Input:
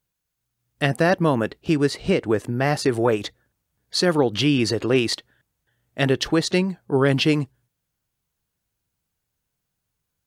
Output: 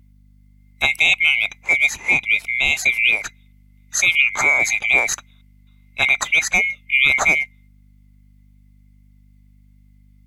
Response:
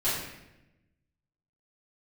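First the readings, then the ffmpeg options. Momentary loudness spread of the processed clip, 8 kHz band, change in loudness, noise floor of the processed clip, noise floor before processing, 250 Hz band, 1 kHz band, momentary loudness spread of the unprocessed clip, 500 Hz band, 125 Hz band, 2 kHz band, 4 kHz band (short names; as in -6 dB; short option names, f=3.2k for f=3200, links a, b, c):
7 LU, +10.0 dB, +5.5 dB, -51 dBFS, -80 dBFS, -18.5 dB, -0.5 dB, 6 LU, -13.0 dB, -16.5 dB, +14.5 dB, +4.0 dB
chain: -af "afftfilt=real='real(if(lt(b,920),b+92*(1-2*mod(floor(b/92),2)),b),0)':imag='imag(if(lt(b,920),b+92*(1-2*mod(floor(b/92),2)),b),0)':win_size=2048:overlap=0.75,aeval=exprs='val(0)+0.00251*(sin(2*PI*50*n/s)+sin(2*PI*2*50*n/s)/2+sin(2*PI*3*50*n/s)/3+sin(2*PI*4*50*n/s)/4+sin(2*PI*5*50*n/s)/5)':c=same,volume=2.5dB"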